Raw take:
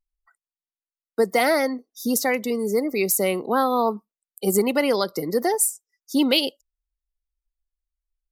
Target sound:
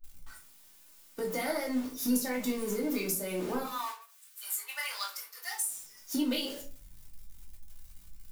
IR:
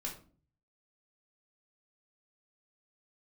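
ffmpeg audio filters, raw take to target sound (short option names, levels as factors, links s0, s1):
-filter_complex "[0:a]aeval=exprs='val(0)+0.5*0.0422*sgn(val(0))':c=same,asettb=1/sr,asplit=3[s0][s1][s2];[s0]atrim=end=3.634[s3];[s1]atrim=start=3.63:end=5.63,asetpts=PTS-STARTPTS,afade=t=in:d=0.004:c=qsin,afade=t=out:st=1.996:d=0.004:c=qsin,highpass=f=1100:w=0.5412,highpass=f=1100:w=1.3066[s4];[s2]atrim=start=5.626[s5];[s3][s4]acrossfade=d=0.004:c1=hsin:c2=qsin[s6];[s6][s5]acrossfade=d=0.004:c1=qsin:c2=hsin,agate=range=0.0224:threshold=0.0562:ratio=3:detection=peak,highshelf=f=5600:g=8.5,acompressor=threshold=0.0447:ratio=6[s7];[1:a]atrim=start_sample=2205,afade=t=out:st=0.35:d=0.01,atrim=end_sample=15876[s8];[s7][s8]afir=irnorm=-1:irlink=0,volume=0.668"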